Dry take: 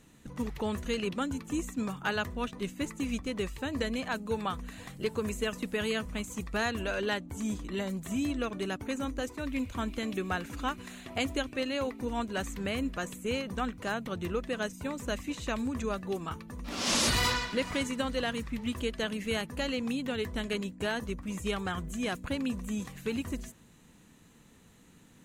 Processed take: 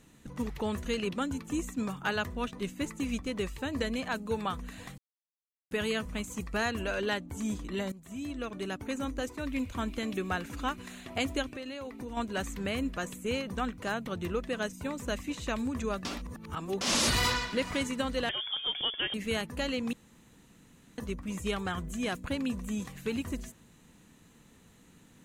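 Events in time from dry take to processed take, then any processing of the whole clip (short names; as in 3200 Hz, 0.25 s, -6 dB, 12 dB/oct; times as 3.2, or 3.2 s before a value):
4.98–5.71 mute
6.36–6.92 notch 3600 Hz
7.92–9.29 fade in equal-power, from -16 dB
11.47–12.17 compressor, threshold -36 dBFS
16.05–16.81 reverse
18.29–19.14 inverted band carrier 3400 Hz
19.93–20.98 room tone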